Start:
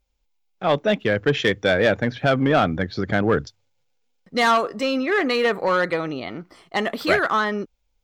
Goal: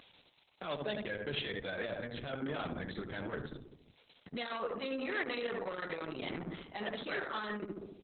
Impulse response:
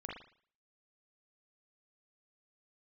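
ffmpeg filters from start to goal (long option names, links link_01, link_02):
-filter_complex "[0:a]equalizer=frequency=7000:width=3.5:gain=11,areverse,acompressor=threshold=-30dB:ratio=20,areverse,highshelf=frequency=2500:gain=11.5,asplit=2[link_01][link_02];[link_02]adelay=71,lowpass=frequency=1200:poles=1,volume=-4.5dB,asplit=2[link_03][link_04];[link_04]adelay=71,lowpass=frequency=1200:poles=1,volume=0.55,asplit=2[link_05][link_06];[link_06]adelay=71,lowpass=frequency=1200:poles=1,volume=0.55,asplit=2[link_07][link_08];[link_08]adelay=71,lowpass=frequency=1200:poles=1,volume=0.55,asplit=2[link_09][link_10];[link_10]adelay=71,lowpass=frequency=1200:poles=1,volume=0.55,asplit=2[link_11][link_12];[link_12]adelay=71,lowpass=frequency=1200:poles=1,volume=0.55,asplit=2[link_13][link_14];[link_14]adelay=71,lowpass=frequency=1200:poles=1,volume=0.55[link_15];[link_03][link_05][link_07][link_09][link_11][link_13][link_15]amix=inputs=7:normalize=0[link_16];[link_01][link_16]amix=inputs=2:normalize=0,asoftclip=type=tanh:threshold=-21dB,alimiter=level_in=8dB:limit=-24dB:level=0:latency=1:release=118,volume=-8dB,highpass=frequency=100:width=0.5412,highpass=frequency=100:width=1.3066,acompressor=mode=upward:threshold=-45dB:ratio=2.5,volume=3dB" -ar 48000 -c:a libopus -b:a 6k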